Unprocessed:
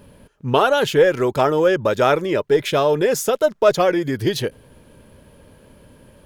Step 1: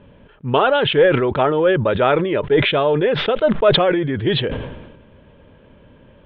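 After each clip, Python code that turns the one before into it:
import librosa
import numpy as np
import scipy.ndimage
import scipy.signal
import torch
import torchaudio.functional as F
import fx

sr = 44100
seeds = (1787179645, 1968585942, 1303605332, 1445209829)

y = scipy.signal.sosfilt(scipy.signal.butter(12, 3600.0, 'lowpass', fs=sr, output='sos'), x)
y = fx.sustainer(y, sr, db_per_s=50.0)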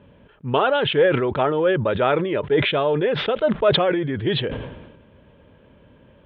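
y = scipy.signal.sosfilt(scipy.signal.butter(2, 42.0, 'highpass', fs=sr, output='sos'), x)
y = F.gain(torch.from_numpy(y), -3.5).numpy()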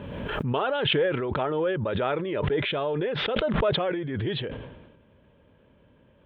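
y = fx.pre_swell(x, sr, db_per_s=27.0)
y = F.gain(torch.from_numpy(y), -8.0).numpy()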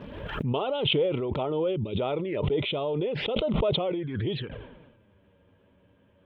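y = fx.env_flanger(x, sr, rest_ms=11.8, full_db=-24.5)
y = fx.spec_box(y, sr, start_s=1.76, length_s=0.21, low_hz=450.0, high_hz=2100.0, gain_db=-12)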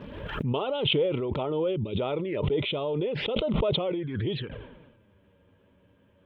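y = fx.peak_eq(x, sr, hz=720.0, db=-3.5, octaves=0.29)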